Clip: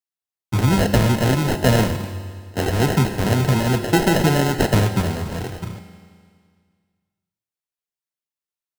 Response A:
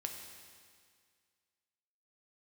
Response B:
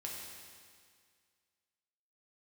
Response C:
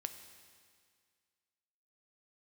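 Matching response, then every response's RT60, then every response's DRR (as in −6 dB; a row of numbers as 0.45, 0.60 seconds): C; 2.0, 2.0, 2.0 seconds; 2.5, −3.0, 7.5 decibels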